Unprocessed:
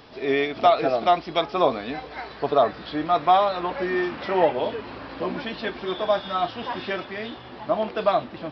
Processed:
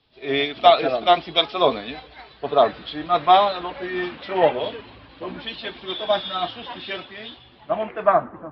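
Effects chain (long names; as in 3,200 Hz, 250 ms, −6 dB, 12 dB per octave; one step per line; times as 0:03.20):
spectral magnitudes quantised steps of 15 dB
low-pass filter sweep 3,600 Hz → 1,200 Hz, 0:07.61–0:08.32
multiband upward and downward expander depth 70%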